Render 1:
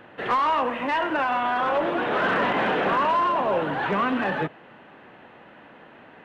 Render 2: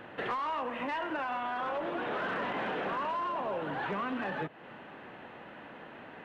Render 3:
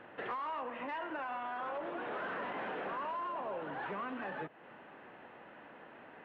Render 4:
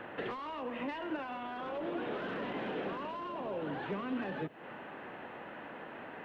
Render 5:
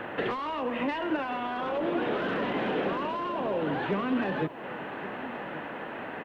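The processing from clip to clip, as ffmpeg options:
ffmpeg -i in.wav -af "acompressor=threshold=-34dB:ratio=4" out.wav
ffmpeg -i in.wav -af "bass=frequency=250:gain=-5,treble=frequency=4000:gain=-13,volume=-5dB" out.wav
ffmpeg -i in.wav -filter_complex "[0:a]acrossover=split=450|3000[link_01][link_02][link_03];[link_02]acompressor=threshold=-53dB:ratio=5[link_04];[link_01][link_04][link_03]amix=inputs=3:normalize=0,volume=8.5dB" out.wav
ffmpeg -i in.wav -af "aecho=1:1:1128:0.178,volume=8.5dB" out.wav

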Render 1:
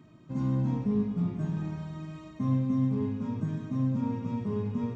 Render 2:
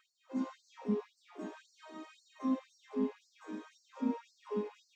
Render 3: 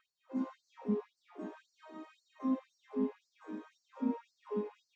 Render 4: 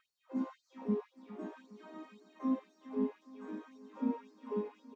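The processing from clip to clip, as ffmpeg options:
ffmpeg -i in.wav -af "flanger=delay=3.9:depth=1.7:regen=-66:speed=0.43:shape=sinusoidal,afftfilt=real='re*gte(b*sr/1024,200*pow(4200/200,0.5+0.5*sin(2*PI*1.9*pts/sr)))':imag='im*gte(b*sr/1024,200*pow(4200/200,0.5+0.5*sin(2*PI*1.9*pts/sr)))':win_size=1024:overlap=0.75,volume=3.5dB" out.wav
ffmpeg -i in.wav -af "highshelf=frequency=3000:gain=-12" out.wav
ffmpeg -i in.wav -af "aecho=1:1:411|822|1233|1644|2055:0.141|0.0805|0.0459|0.0262|0.0149" out.wav

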